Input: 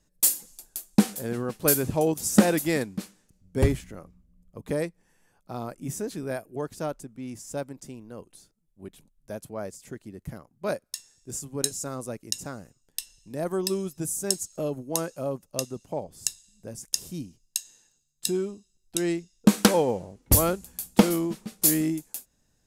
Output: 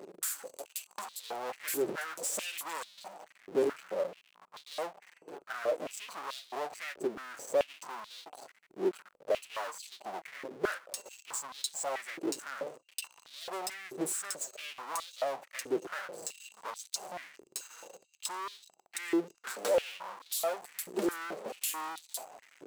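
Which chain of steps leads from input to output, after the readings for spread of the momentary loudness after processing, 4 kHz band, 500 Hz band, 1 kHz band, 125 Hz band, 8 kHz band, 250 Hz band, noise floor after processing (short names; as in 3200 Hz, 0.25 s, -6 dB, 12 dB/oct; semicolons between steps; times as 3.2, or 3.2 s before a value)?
13 LU, -7.0 dB, -5.5 dB, -3.5 dB, -27.5 dB, -9.5 dB, -14.5 dB, -70 dBFS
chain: Wiener smoothing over 25 samples; bell 7700 Hz +7 dB 0.34 oct; limiter -9 dBFS, peak gain reduction 9 dB; compressor, threshold -37 dBFS, peak gain reduction 20 dB; sample leveller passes 1; flange 1 Hz, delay 5 ms, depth 2.7 ms, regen +37%; power-law curve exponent 0.35; stepped high-pass 4.6 Hz 380–3800 Hz; gain -7 dB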